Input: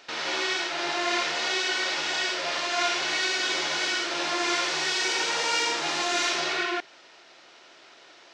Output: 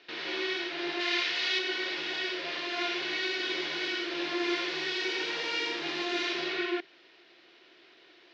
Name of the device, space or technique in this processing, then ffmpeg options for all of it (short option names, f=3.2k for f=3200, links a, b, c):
guitar cabinet: -filter_complex "[0:a]highpass=110,equalizer=f=210:t=q:w=4:g=-3,equalizer=f=350:t=q:w=4:g=7,equalizer=f=590:t=q:w=4:g=-7,equalizer=f=870:t=q:w=4:g=-9,equalizer=f=1.3k:t=q:w=4:g=-7,lowpass=f=4.3k:w=0.5412,lowpass=f=4.3k:w=1.3066,asettb=1/sr,asplit=3[a][b][c];[a]atrim=end=1.004[d];[b]atrim=start=1:end=1.59,asetpts=PTS-STARTPTS,afade=t=in:d=0.004:c=qsin,afade=t=out:st=0.586:d=0.004:c=qsin,tiltshelf=f=1.1k:g=-6.5[e];[c]atrim=start=1.586[f];[d][e]acrossfade=d=0.004:c1=hsin:c2=qsin[g];[g][f]acrossfade=d=0.004:c1=qsin:c2=hsin,volume=-4dB"